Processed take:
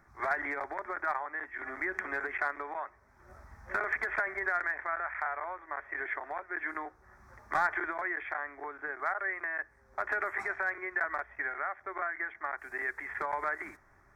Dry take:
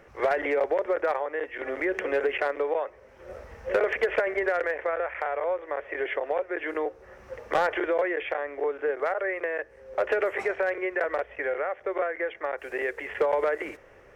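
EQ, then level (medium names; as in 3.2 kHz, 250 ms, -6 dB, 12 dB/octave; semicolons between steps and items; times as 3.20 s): dynamic bell 1.9 kHz, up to +7 dB, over -42 dBFS, Q 0.73; static phaser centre 1.2 kHz, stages 4; -4.5 dB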